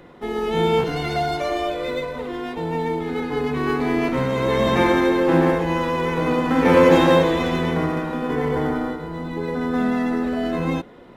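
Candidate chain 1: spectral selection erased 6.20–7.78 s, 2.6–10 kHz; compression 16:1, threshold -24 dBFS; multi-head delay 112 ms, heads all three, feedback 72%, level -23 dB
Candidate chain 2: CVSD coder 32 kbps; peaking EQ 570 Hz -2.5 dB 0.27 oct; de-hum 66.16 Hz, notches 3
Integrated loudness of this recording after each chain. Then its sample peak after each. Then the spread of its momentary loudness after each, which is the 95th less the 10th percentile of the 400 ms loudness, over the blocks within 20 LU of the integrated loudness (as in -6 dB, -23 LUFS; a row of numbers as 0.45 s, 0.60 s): -28.5 LUFS, -22.0 LUFS; -15.5 dBFS, -4.0 dBFS; 3 LU, 11 LU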